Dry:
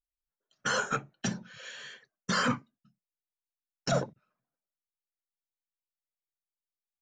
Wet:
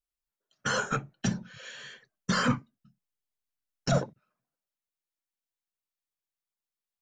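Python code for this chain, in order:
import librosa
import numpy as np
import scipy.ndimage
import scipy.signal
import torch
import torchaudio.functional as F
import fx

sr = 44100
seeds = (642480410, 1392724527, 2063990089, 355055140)

y = fx.low_shelf(x, sr, hz=150.0, db=11.0, at=(0.66, 3.98))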